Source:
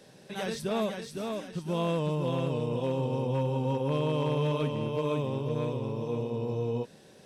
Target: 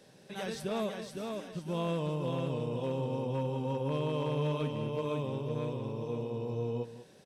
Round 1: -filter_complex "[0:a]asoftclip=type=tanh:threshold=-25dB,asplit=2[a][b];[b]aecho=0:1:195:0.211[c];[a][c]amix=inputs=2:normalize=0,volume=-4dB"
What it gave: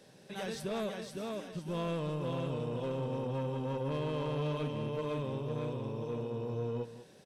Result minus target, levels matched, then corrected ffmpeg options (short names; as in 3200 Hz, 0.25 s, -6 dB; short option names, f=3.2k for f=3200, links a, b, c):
soft clip: distortion +20 dB
-filter_complex "[0:a]asoftclip=type=tanh:threshold=-13dB,asplit=2[a][b];[b]aecho=0:1:195:0.211[c];[a][c]amix=inputs=2:normalize=0,volume=-4dB"